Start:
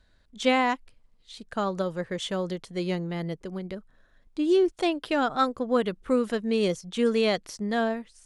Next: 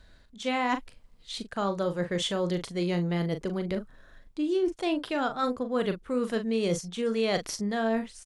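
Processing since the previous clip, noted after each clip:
reversed playback
downward compressor 6 to 1, threshold −33 dBFS, peak gain reduction 15 dB
reversed playback
double-tracking delay 40 ms −9 dB
level +7 dB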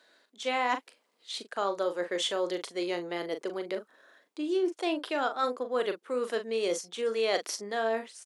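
high-pass filter 330 Hz 24 dB per octave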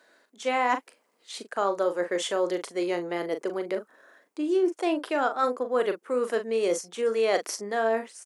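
parametric band 3,700 Hz −8.5 dB 0.93 octaves
level +4.5 dB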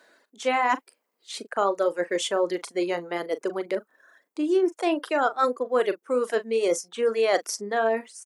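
reverb reduction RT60 1.1 s
level +3 dB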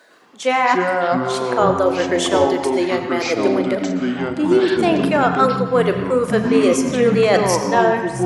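on a send at −6 dB: convolution reverb RT60 1.1 s, pre-delay 77 ms
on the sum: delay with pitch and tempo change per echo 107 ms, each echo −6 semitones, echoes 3
level +6.5 dB

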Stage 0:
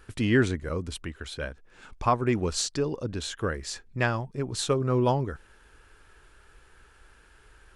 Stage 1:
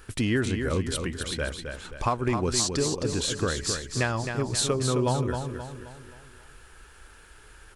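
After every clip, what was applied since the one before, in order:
high-shelf EQ 5,600 Hz +7.5 dB
downward compressor 4 to 1, threshold −26 dBFS, peak gain reduction 8.5 dB
on a send: repeating echo 264 ms, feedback 44%, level −6.5 dB
on the sum: level +3.5 dB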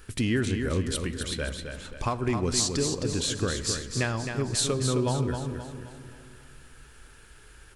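parametric band 910 Hz −4.5 dB 1.8 octaves
on a send at −13.5 dB: convolution reverb RT60 2.7 s, pre-delay 5 ms

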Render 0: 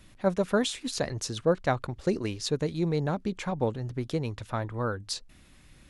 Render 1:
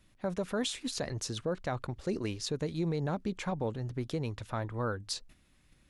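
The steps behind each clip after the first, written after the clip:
noise gate −50 dBFS, range −8 dB
brickwall limiter −21 dBFS, peak gain reduction 9 dB
level −2.5 dB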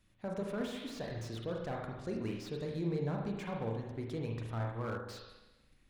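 spring reverb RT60 1.1 s, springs 35/44 ms, chirp 45 ms, DRR 0.5 dB
slew-rate limiting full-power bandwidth 32 Hz
level −6.5 dB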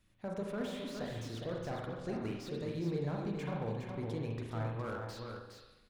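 single-tap delay 413 ms −6 dB
level −1 dB

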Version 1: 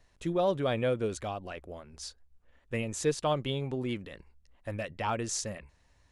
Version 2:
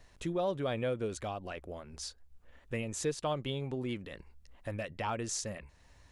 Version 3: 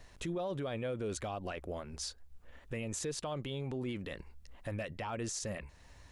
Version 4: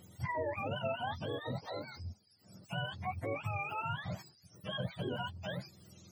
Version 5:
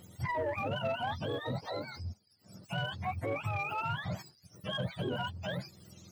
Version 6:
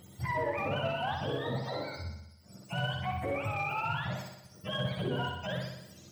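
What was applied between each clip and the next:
downward compressor 1.5 to 1, threshold −54 dBFS, peak gain reduction 11.5 dB; level +5.5 dB
brickwall limiter −33.5 dBFS, peak gain reduction 11 dB; level +3.5 dB
frequency axis turned over on the octave scale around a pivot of 580 Hz; level +2 dB
leveller curve on the samples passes 1
flutter between parallel walls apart 10.5 metres, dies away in 0.85 s

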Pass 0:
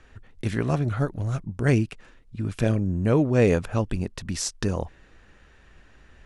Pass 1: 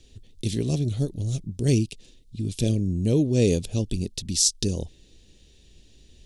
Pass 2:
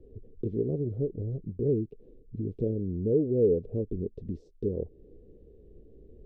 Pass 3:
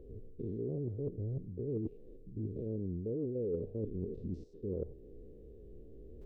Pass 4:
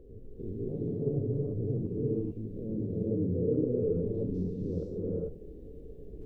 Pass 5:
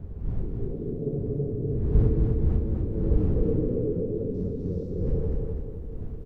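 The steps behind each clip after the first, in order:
drawn EQ curve 400 Hz 0 dB, 1,400 Hz −26 dB, 3,600 Hz +9 dB
downward compressor 2 to 1, threshold −37 dBFS, peak gain reduction 12 dB; low-pass with resonance 450 Hz, resonance Q 4.9
spectrum averaged block by block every 100 ms; reversed playback; downward compressor 5 to 1, threshold −37 dBFS, peak gain reduction 13.5 dB; reversed playback; level +2 dB
reverb whose tail is shaped and stops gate 470 ms rising, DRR −5.5 dB
wind on the microphone 81 Hz −29 dBFS; repeating echo 252 ms, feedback 46%, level −3.5 dB

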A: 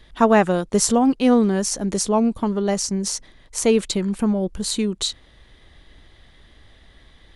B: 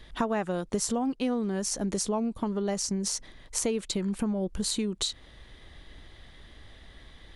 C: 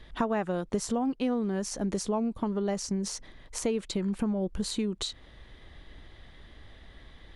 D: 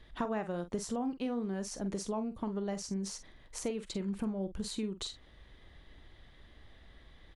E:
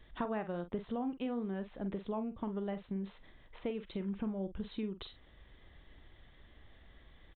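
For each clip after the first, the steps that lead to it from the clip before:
downward compressor 5 to 1, threshold −27 dBFS, peak gain reduction 15.5 dB
high-shelf EQ 4,800 Hz −9 dB
double-tracking delay 46 ms −11 dB; level −6.5 dB
downsampling to 8,000 Hz; level −2 dB

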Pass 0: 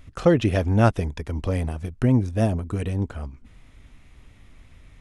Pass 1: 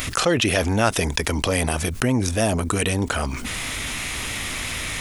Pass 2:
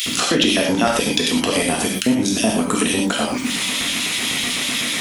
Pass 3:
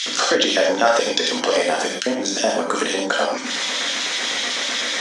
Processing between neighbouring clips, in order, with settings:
spectral tilt +3.5 dB per octave; envelope flattener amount 70%
auto-filter high-pass square 8 Hz 230–3,300 Hz; reverb whose tail is shaped and stops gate 140 ms flat, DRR −1.5 dB; downward compressor 2 to 1, threshold −19 dBFS, peak gain reduction 6 dB; level +2.5 dB
loudspeaker in its box 410–6,600 Hz, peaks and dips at 530 Hz +8 dB, 820 Hz +3 dB, 1,600 Hz +6 dB, 2,600 Hz −7 dB, 5,900 Hz +4 dB

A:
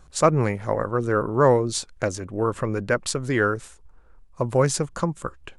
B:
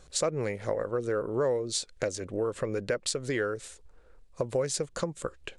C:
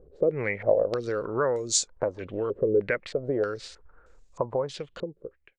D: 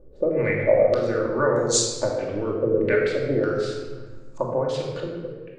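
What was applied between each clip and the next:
octave-band graphic EQ 500/1,000/2,000/4,000/8,000 Hz +10/−4/+5/+8/+7 dB; downward compressor 3 to 1, threshold −24 dBFS, peak gain reduction 13.5 dB; level −5 dB
fade-out on the ending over 1.28 s; low-pass on a step sequencer 3.2 Hz 430–6,900 Hz
rectangular room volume 1,300 cubic metres, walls mixed, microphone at 2.5 metres

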